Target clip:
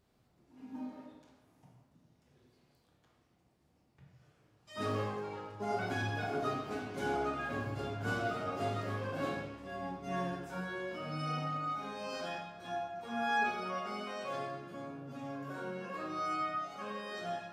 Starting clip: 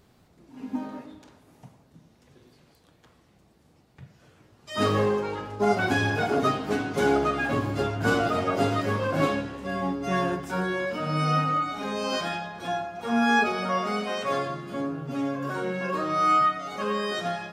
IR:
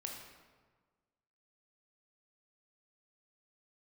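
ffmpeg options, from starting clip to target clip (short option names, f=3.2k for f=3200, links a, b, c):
-filter_complex "[1:a]atrim=start_sample=2205,afade=t=out:st=0.3:d=0.01,atrim=end_sample=13671,asetrate=48510,aresample=44100[a];[0:a][a]afir=irnorm=-1:irlink=0,volume=-9dB"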